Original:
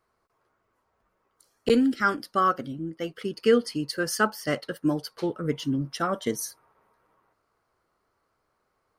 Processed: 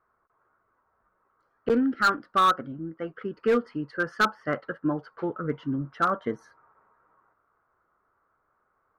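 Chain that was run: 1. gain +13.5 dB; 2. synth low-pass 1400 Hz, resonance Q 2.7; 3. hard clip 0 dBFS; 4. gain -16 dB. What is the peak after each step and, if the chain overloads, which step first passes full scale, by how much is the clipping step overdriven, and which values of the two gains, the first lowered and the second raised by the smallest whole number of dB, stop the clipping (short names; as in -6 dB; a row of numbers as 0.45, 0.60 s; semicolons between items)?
+4.5, +9.5, 0.0, -16.0 dBFS; step 1, 9.5 dB; step 1 +3.5 dB, step 4 -6 dB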